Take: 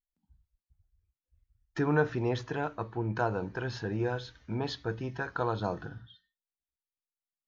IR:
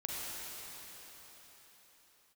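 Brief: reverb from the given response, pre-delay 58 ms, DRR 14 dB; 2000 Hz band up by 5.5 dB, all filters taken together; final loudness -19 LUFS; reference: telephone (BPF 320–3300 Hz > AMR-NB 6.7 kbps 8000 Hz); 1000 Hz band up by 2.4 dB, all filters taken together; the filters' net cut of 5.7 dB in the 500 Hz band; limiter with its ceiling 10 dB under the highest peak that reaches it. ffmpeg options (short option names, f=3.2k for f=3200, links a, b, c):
-filter_complex "[0:a]equalizer=f=500:t=o:g=-7,equalizer=f=1k:t=o:g=3.5,equalizer=f=2k:t=o:g=7.5,alimiter=limit=-23.5dB:level=0:latency=1,asplit=2[a][b];[1:a]atrim=start_sample=2205,adelay=58[c];[b][c]afir=irnorm=-1:irlink=0,volume=-17dB[d];[a][d]amix=inputs=2:normalize=0,highpass=320,lowpass=3.3k,volume=20.5dB" -ar 8000 -c:a libopencore_amrnb -b:a 6700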